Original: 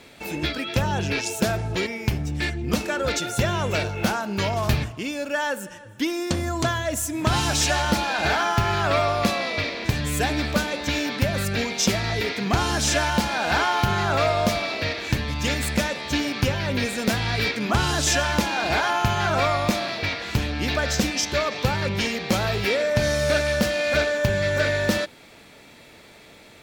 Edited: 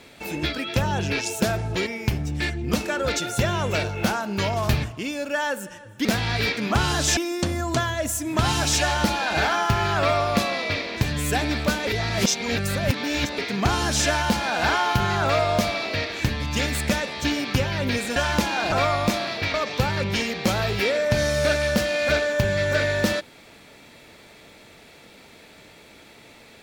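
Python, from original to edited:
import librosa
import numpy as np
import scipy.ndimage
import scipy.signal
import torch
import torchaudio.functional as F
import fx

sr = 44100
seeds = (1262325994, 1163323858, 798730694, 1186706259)

y = fx.edit(x, sr, fx.reverse_span(start_s=10.75, length_s=1.51),
    fx.move(start_s=17.04, length_s=1.12, to_s=6.05),
    fx.cut(start_s=18.72, length_s=0.61),
    fx.cut(start_s=20.15, length_s=1.24), tone=tone)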